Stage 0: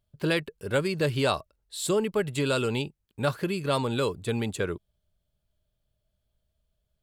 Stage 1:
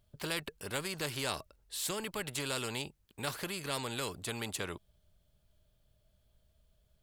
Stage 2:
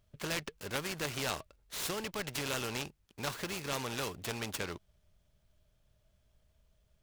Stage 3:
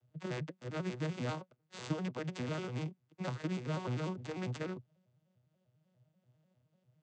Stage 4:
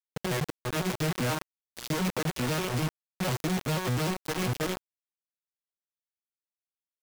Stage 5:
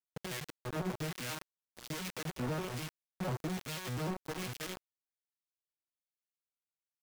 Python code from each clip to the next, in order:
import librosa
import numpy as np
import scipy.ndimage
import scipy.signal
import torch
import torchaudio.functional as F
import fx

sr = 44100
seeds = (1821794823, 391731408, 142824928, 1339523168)

y1 = fx.spectral_comp(x, sr, ratio=2.0)
y1 = F.gain(torch.from_numpy(y1), -6.0).numpy()
y2 = fx.peak_eq(y1, sr, hz=2500.0, db=2.0, octaves=0.77)
y2 = fx.noise_mod_delay(y2, sr, seeds[0], noise_hz=2200.0, depth_ms=0.041)
y3 = fx.vocoder_arp(y2, sr, chord='major triad', root=47, every_ms=99)
y3 = fx.am_noise(y3, sr, seeds[1], hz=5.7, depth_pct=55)
y3 = F.gain(torch.from_numpy(y3), 3.5).numpy()
y4 = fx.quant_companded(y3, sr, bits=2)
y5 = fx.harmonic_tremolo(y4, sr, hz=1.2, depth_pct=70, crossover_hz=1600.0)
y5 = F.gain(torch.from_numpy(y5), -5.5).numpy()